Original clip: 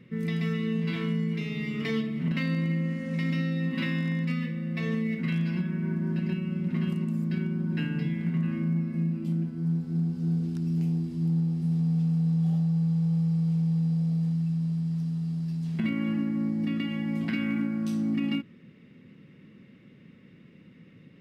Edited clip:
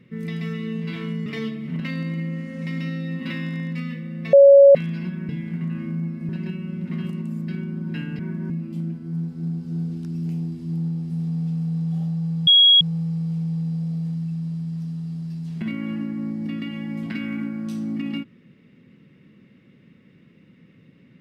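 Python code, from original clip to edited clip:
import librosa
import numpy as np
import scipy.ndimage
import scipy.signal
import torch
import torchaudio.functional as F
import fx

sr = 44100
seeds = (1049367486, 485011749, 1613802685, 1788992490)

y = fx.edit(x, sr, fx.cut(start_s=1.26, length_s=0.52),
    fx.bleep(start_s=4.85, length_s=0.42, hz=558.0, db=-6.0),
    fx.swap(start_s=5.81, length_s=0.31, other_s=8.02, other_length_s=1.0),
    fx.insert_tone(at_s=12.99, length_s=0.34, hz=3310.0, db=-9.5), tone=tone)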